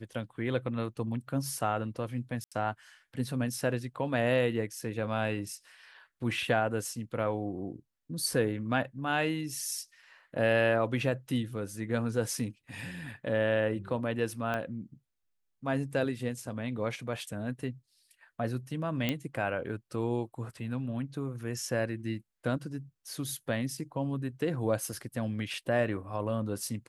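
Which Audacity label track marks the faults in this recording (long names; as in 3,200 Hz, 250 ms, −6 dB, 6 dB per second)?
2.440000	2.520000	drop-out 76 ms
14.540000	14.540000	click −20 dBFS
19.090000	19.090000	click −15 dBFS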